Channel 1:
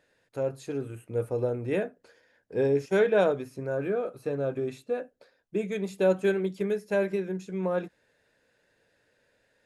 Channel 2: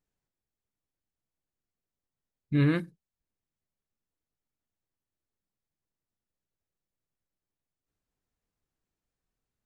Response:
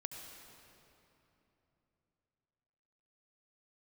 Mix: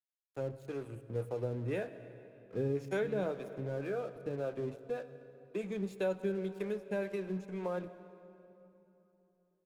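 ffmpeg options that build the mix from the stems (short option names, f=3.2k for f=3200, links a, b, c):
-filter_complex "[0:a]lowshelf=f=90:g=6.5,acrossover=split=400[a][b];[a]aeval=exprs='val(0)*(1-0.7/2+0.7/2*cos(2*PI*1.9*n/s))':c=same[c];[b]aeval=exprs='val(0)*(1-0.7/2-0.7/2*cos(2*PI*1.9*n/s))':c=same[d];[c][d]amix=inputs=2:normalize=0,aeval=exprs='sgn(val(0))*max(abs(val(0))-0.00299,0)':c=same,volume=-4.5dB,asplit=2[e][f];[f]volume=-6dB[g];[1:a]adelay=500,volume=-19.5dB[h];[2:a]atrim=start_sample=2205[i];[g][i]afir=irnorm=-1:irlink=0[j];[e][h][j]amix=inputs=3:normalize=0,acrossover=split=170[k][l];[l]acompressor=threshold=-35dB:ratio=2[m];[k][m]amix=inputs=2:normalize=0"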